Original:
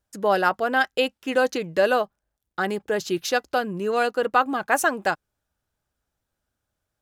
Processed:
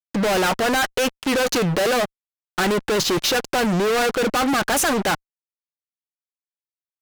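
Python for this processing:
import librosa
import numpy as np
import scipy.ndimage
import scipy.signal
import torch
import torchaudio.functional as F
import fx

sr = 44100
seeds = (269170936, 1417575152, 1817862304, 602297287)

y = fx.env_lowpass(x, sr, base_hz=2000.0, full_db=-17.0)
y = fx.fuzz(y, sr, gain_db=44.0, gate_db=-47.0)
y = F.gain(torch.from_numpy(y), -5.0).numpy()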